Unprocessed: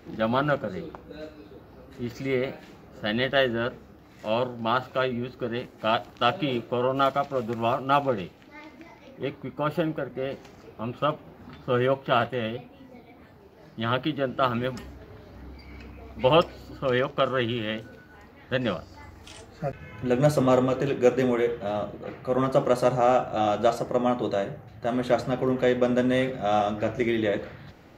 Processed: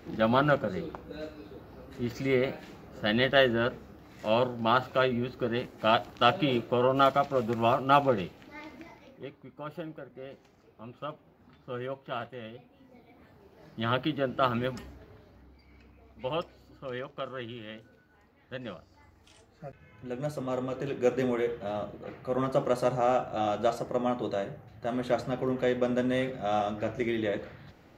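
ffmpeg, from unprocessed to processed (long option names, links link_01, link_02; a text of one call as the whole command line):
ffmpeg -i in.wav -af "volume=18.5dB,afade=type=out:start_time=8.76:duration=0.53:silence=0.223872,afade=type=in:start_time=12.52:duration=1.27:silence=0.298538,afade=type=out:start_time=14.64:duration=0.83:silence=0.298538,afade=type=in:start_time=20.47:duration=0.7:silence=0.398107" out.wav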